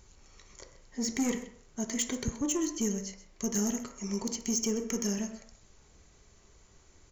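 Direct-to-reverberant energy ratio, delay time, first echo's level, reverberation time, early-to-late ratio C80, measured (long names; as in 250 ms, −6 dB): 4.0 dB, 130 ms, −15.5 dB, 0.60 s, 11.5 dB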